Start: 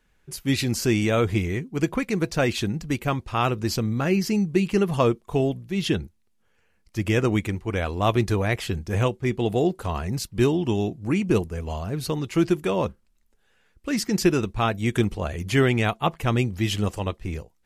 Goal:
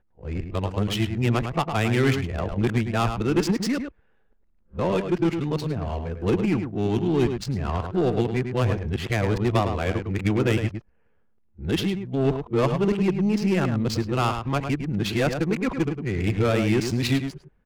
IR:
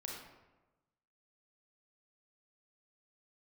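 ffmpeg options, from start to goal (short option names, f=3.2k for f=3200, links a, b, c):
-filter_complex "[0:a]areverse,aeval=exprs='(tanh(5.62*val(0)+0.15)-tanh(0.15))/5.62':c=same,acontrast=87,asplit=2[a][b];[b]adelay=105,volume=-7dB,highshelf=f=4k:g=-2.36[c];[a][c]amix=inputs=2:normalize=0,adynamicsmooth=sensitivity=2.5:basefreq=1.4k,volume=-6dB"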